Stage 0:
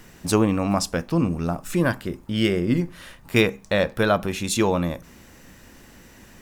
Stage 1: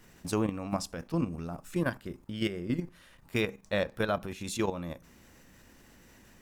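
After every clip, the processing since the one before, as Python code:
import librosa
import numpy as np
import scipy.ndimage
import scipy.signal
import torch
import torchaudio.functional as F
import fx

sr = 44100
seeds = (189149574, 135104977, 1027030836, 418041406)

y = fx.level_steps(x, sr, step_db=10)
y = y * 10.0 ** (-7.0 / 20.0)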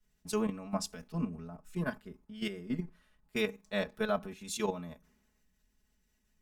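y = x + 0.93 * np.pad(x, (int(4.7 * sr / 1000.0), 0))[:len(x)]
y = fx.band_widen(y, sr, depth_pct=70)
y = y * 10.0 ** (-7.0 / 20.0)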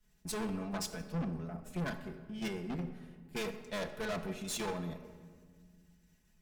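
y = fx.tube_stage(x, sr, drive_db=41.0, bias=0.55)
y = fx.room_shoebox(y, sr, seeds[0], volume_m3=2400.0, walls='mixed', distance_m=0.76)
y = y * 10.0 ** (6.5 / 20.0)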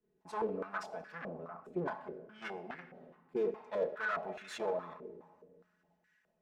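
y = fx.filter_held_bandpass(x, sr, hz=4.8, low_hz=390.0, high_hz=1700.0)
y = y * 10.0 ** (11.0 / 20.0)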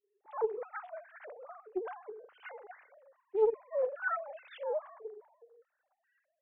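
y = fx.sine_speech(x, sr)
y = fx.doppler_dist(y, sr, depth_ms=0.17)
y = y * 10.0 ** (2.5 / 20.0)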